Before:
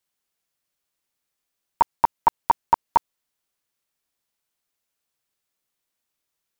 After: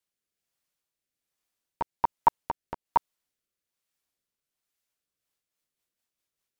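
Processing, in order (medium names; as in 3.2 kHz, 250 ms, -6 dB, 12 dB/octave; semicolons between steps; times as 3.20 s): 2.36–2.86 s: compression, threshold -19 dBFS, peak gain reduction 7.5 dB; rotary cabinet horn 1.2 Hz, later 5 Hz, at 4.87 s; trim -2 dB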